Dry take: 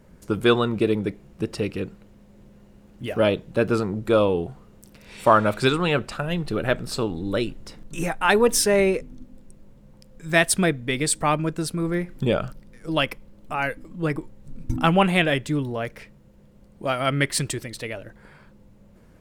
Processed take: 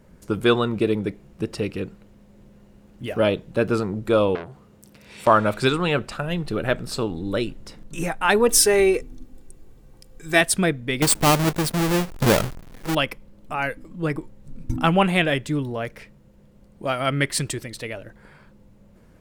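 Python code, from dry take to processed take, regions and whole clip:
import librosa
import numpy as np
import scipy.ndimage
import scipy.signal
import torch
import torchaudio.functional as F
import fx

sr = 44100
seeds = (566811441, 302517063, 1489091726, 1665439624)

y = fx.chain(x, sr, fx.highpass(hz=62.0, slope=12),
    fx.transformer_sat(knee_hz=2900.0), at=(4.35, 5.27))
y = fx.chain(y, sr, fx.high_shelf(hz=5500.0, db=6.0),
    fx.comb(ms=2.6, depth=0.57), at=(8.49, 10.41))
y = fx.chain(y, sr, fx.halfwave_hold(),
    fx.high_shelf(hz=11000.0, db=4.0), at=(11.02, 12.95))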